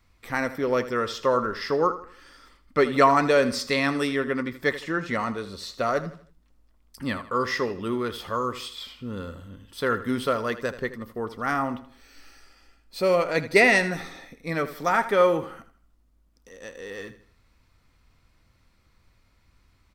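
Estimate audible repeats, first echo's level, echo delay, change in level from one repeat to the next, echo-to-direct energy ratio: 3, -14.0 dB, 80 ms, -8.5 dB, -13.5 dB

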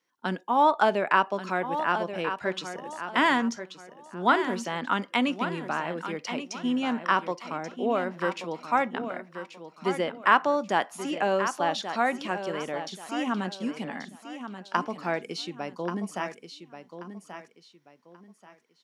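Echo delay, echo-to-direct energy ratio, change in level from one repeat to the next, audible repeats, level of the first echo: 1.133 s, -9.5 dB, -10.5 dB, 3, -10.0 dB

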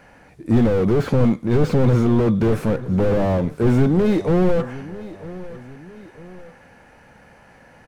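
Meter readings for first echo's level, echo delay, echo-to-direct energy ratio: -17.0 dB, 0.949 s, -16.0 dB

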